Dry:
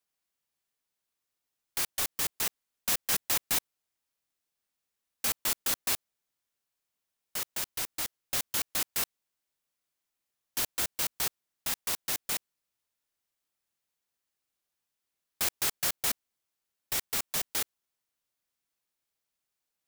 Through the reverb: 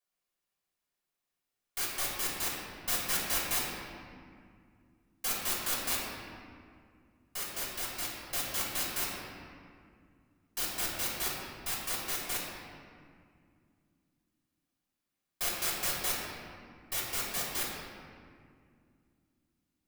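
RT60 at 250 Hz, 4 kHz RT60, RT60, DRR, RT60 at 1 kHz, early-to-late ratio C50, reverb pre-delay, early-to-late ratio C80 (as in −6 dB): 3.5 s, 1.3 s, 2.2 s, −7.0 dB, 2.1 s, −0.5 dB, 3 ms, 1.0 dB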